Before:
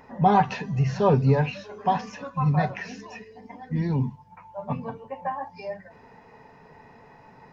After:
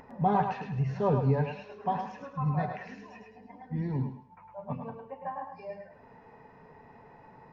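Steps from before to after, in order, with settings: low-pass 1.6 kHz 6 dB/octave; upward compressor, threshold -41 dBFS; on a send: thinning echo 106 ms, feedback 33%, high-pass 420 Hz, level -5 dB; on the sum: trim -6.5 dB

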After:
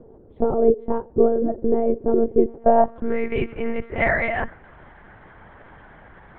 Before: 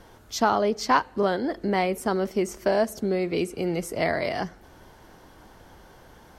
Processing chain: low-pass sweep 440 Hz -> 1.9 kHz, 2.43–3.20 s; monotone LPC vocoder at 8 kHz 230 Hz; trim +2.5 dB

